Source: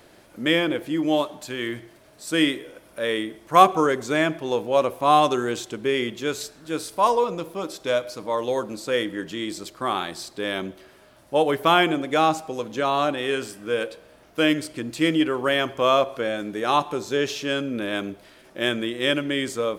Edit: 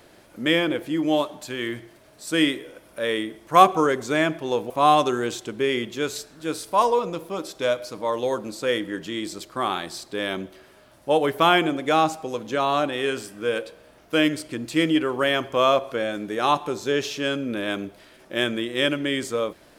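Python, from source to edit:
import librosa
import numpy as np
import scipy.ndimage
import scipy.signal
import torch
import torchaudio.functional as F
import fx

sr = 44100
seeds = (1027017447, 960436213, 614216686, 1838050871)

y = fx.edit(x, sr, fx.cut(start_s=4.7, length_s=0.25), tone=tone)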